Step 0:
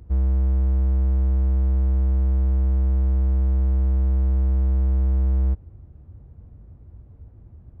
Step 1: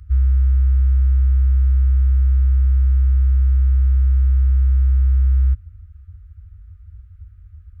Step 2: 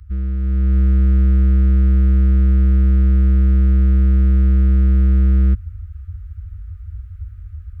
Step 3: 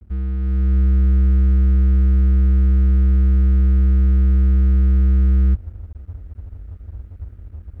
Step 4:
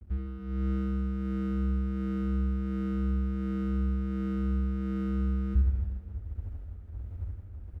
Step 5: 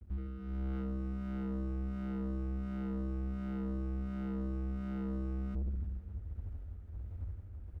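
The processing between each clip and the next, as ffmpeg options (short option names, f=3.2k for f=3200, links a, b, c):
-af "afftfilt=real='re*(1-between(b*sr/4096,100,1200))':imag='im*(1-between(b*sr/4096,100,1200))':win_size=4096:overlap=0.75,volume=5dB"
-filter_complex "[0:a]acrossover=split=370[a][b];[a]asoftclip=type=tanh:threshold=-19.5dB[c];[c][b]amix=inputs=2:normalize=0,dynaudnorm=f=390:g=3:m=9dB"
-filter_complex "[0:a]acrossover=split=150[a][b];[b]acompressor=threshold=-26dB:ratio=6[c];[a][c]amix=inputs=2:normalize=0,aeval=exprs='sgn(val(0))*max(abs(val(0))-0.00668,0)':c=same,volume=-1dB"
-af "tremolo=f=1.4:d=0.52,aecho=1:1:70|161|279.3|433.1|633:0.631|0.398|0.251|0.158|0.1,volume=-5dB"
-af "aeval=exprs='(tanh(31.6*val(0)+0.2)-tanh(0.2))/31.6':c=same,volume=-3dB"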